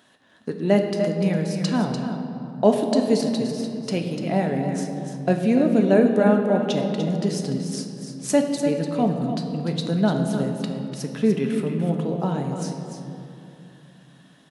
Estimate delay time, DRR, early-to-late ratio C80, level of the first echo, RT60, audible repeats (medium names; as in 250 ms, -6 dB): 295 ms, 1.5 dB, 4.5 dB, -8.5 dB, 2.8 s, 1